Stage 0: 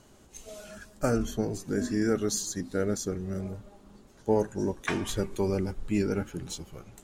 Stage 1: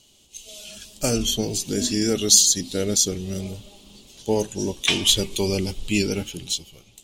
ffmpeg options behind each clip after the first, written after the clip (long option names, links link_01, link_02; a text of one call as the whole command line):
ffmpeg -i in.wav -af "dynaudnorm=framelen=150:gausssize=11:maxgain=12.5dB,highshelf=frequency=2200:width_type=q:width=3:gain=12,volume=-7dB" out.wav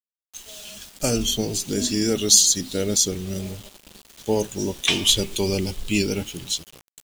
ffmpeg -i in.wav -af "acrusher=bits=6:mix=0:aa=0.000001" out.wav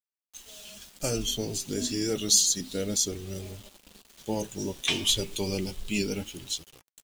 ffmpeg -i in.wav -af "flanger=delay=2.2:depth=5.9:regen=-57:speed=0.3:shape=triangular,volume=-2.5dB" out.wav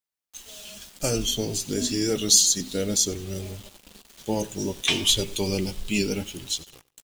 ffmpeg -i in.wav -af "aecho=1:1:94|188:0.0841|0.0244,volume=4dB" out.wav